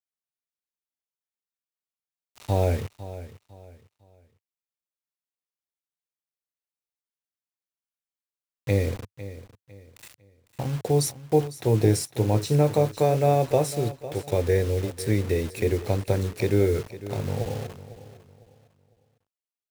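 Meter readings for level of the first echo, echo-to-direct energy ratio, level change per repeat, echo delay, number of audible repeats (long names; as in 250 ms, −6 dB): −15.0 dB, −14.5 dB, −10.0 dB, 503 ms, 2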